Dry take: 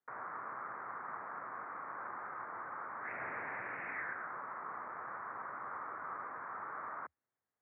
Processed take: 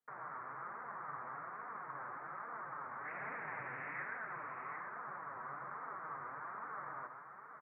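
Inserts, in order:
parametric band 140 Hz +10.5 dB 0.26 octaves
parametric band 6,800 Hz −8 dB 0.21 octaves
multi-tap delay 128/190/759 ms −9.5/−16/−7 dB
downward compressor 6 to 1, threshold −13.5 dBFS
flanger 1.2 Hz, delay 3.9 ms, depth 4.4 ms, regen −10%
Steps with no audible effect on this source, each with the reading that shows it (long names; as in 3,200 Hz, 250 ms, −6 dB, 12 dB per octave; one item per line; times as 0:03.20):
parametric band 6,800 Hz: nothing at its input above 2,700 Hz
downward compressor, threshold −13.5 dBFS: peak of its input −28.5 dBFS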